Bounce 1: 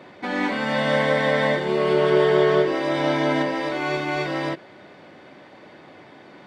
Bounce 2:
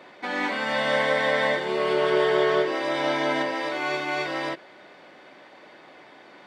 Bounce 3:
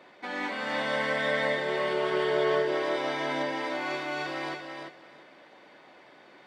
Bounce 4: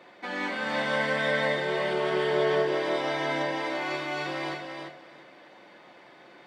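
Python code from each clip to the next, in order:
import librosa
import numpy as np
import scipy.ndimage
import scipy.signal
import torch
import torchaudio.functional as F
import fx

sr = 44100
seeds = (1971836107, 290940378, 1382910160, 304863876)

y1 = fx.highpass(x, sr, hz=550.0, slope=6)
y2 = fx.echo_feedback(y1, sr, ms=341, feedback_pct=18, wet_db=-5.5)
y2 = F.gain(torch.from_numpy(y2), -6.0).numpy()
y3 = fx.room_shoebox(y2, sr, seeds[0], volume_m3=350.0, walls='furnished', distance_m=0.83)
y3 = F.gain(torch.from_numpy(y3), 1.0).numpy()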